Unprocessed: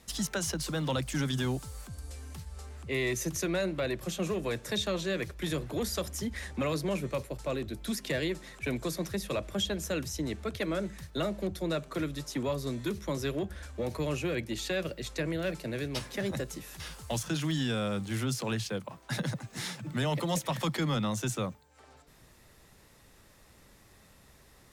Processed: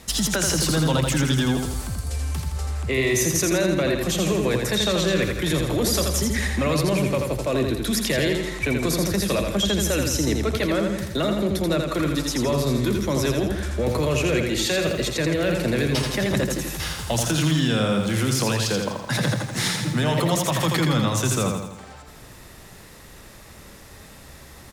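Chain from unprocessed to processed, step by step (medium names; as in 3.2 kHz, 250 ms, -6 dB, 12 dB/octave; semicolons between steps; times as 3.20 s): in parallel at +1.5 dB: compressor with a negative ratio -35 dBFS; on the sum: feedback delay 83 ms, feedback 52%, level -4.5 dB; trim +4 dB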